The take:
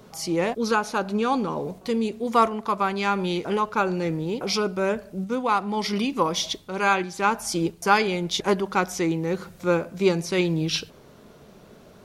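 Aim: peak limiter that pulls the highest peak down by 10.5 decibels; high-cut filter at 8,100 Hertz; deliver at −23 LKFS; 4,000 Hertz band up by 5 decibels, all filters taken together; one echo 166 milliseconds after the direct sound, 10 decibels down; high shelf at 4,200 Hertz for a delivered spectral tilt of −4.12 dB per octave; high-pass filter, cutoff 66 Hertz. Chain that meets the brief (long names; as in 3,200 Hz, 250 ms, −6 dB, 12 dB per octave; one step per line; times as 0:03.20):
high-pass filter 66 Hz
low-pass filter 8,100 Hz
parametric band 4,000 Hz +4 dB
high-shelf EQ 4,200 Hz +4.5 dB
brickwall limiter −15 dBFS
single-tap delay 166 ms −10 dB
level +2.5 dB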